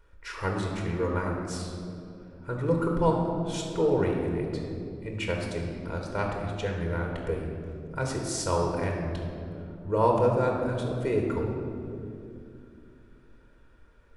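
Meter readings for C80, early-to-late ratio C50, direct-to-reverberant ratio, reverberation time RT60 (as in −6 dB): 4.0 dB, 2.5 dB, 0.0 dB, 2.7 s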